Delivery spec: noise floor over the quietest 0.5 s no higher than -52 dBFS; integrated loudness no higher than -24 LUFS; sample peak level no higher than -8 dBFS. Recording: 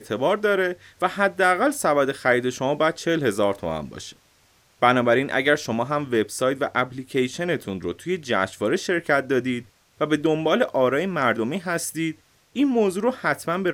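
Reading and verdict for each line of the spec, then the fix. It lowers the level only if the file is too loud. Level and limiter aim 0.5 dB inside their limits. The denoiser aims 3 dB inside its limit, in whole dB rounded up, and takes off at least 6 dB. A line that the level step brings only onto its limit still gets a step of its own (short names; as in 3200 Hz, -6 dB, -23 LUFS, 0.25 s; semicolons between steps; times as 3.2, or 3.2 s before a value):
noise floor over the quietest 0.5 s -60 dBFS: OK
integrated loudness -23.0 LUFS: fail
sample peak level -3.0 dBFS: fail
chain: gain -1.5 dB; limiter -8.5 dBFS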